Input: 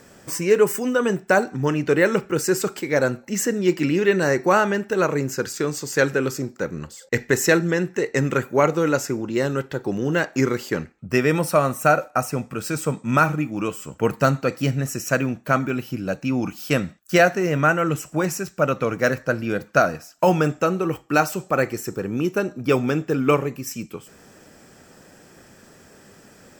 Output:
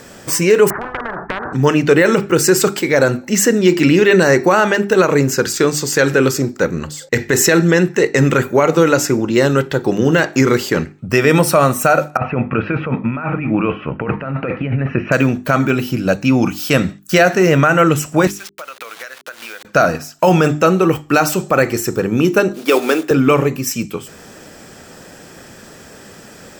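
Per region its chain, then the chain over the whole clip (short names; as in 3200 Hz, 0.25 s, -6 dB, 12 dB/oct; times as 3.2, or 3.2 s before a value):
0.7–1.53 steep low-pass 1400 Hz 48 dB/oct + compressor 12:1, threshold -22 dBFS + spectral compressor 10:1
12.17–15.12 elliptic low-pass 2600 Hz, stop band 70 dB + negative-ratio compressor -28 dBFS
18.27–19.65 level-crossing sampler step -34 dBFS + Bessel high-pass 1300 Hz + compressor 16:1, threshold -37 dBFS
22.52–23.11 block floating point 5-bit + HPF 310 Hz 24 dB/oct
whole clip: bell 3600 Hz +3 dB; notches 50/100/150/200/250/300/350/400 Hz; maximiser +11.5 dB; gain -1 dB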